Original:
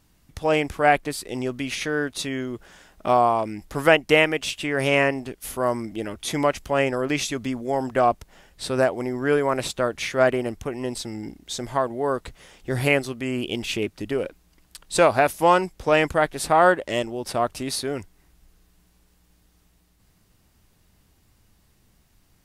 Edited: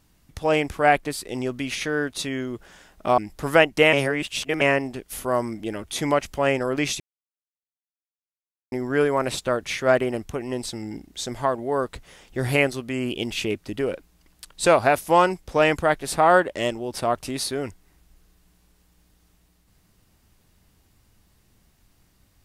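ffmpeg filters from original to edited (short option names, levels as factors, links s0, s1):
-filter_complex "[0:a]asplit=6[s0][s1][s2][s3][s4][s5];[s0]atrim=end=3.182[s6];[s1]atrim=start=3.498:end=4.252[s7];[s2]atrim=start=4.248:end=4.932,asetpts=PTS-STARTPTS,areverse[s8];[s3]atrim=start=4.928:end=7.32,asetpts=PTS-STARTPTS,afade=t=out:st=2.388:d=0.004:c=hsin[s9];[s4]atrim=start=7.32:end=9.04,asetpts=PTS-STARTPTS,volume=0[s10];[s5]atrim=start=9.04,asetpts=PTS-STARTPTS,afade=t=in:d=0.004:c=hsin[s11];[s6][s7]acrossfade=d=0.004:c1=hsin:c2=hsin[s12];[s12][s8]acrossfade=d=0.004:c1=hsin:c2=hsin[s13];[s9][s10][s11]concat=n=3:v=0:a=1[s14];[s13][s14]acrossfade=d=0.004:c1=hsin:c2=hsin"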